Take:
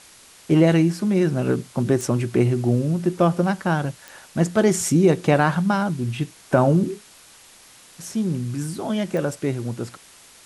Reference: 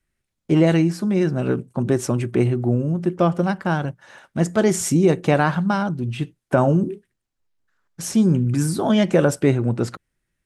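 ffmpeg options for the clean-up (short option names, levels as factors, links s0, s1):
-af "adeclick=t=4,afwtdn=0.005,asetnsamples=n=441:p=0,asendcmd='7.55 volume volume 7dB',volume=1"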